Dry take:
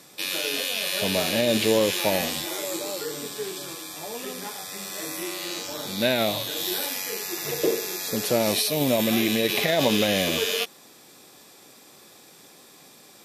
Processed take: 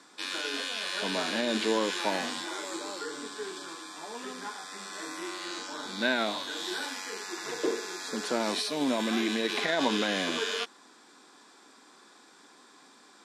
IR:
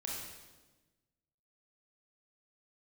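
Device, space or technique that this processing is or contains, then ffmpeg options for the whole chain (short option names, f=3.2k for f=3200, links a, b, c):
television speaker: -af "highpass=f=210:w=0.5412,highpass=f=210:w=1.3066,equalizer=f=270:t=q:w=4:g=4,equalizer=f=560:t=q:w=4:g=-6,equalizer=f=1k:t=q:w=4:g=8,equalizer=f=1.5k:t=q:w=4:g=10,equalizer=f=2.6k:t=q:w=4:g=-4,equalizer=f=6k:t=q:w=4:g=-3,lowpass=f=8.1k:w=0.5412,lowpass=f=8.1k:w=1.3066,volume=-5.5dB"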